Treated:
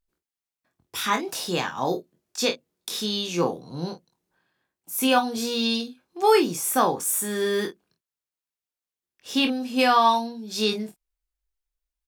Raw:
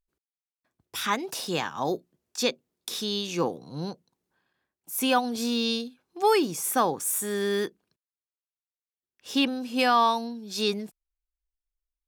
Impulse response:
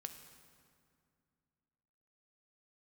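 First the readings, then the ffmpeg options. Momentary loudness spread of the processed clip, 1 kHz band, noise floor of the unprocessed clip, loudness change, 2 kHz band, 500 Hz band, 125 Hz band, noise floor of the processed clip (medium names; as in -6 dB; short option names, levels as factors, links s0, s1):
14 LU, +3.0 dB, under -85 dBFS, +3.0 dB, +3.0 dB, +3.0 dB, +3.0 dB, under -85 dBFS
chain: -af "aecho=1:1:23|48:0.531|0.266,volume=1.19"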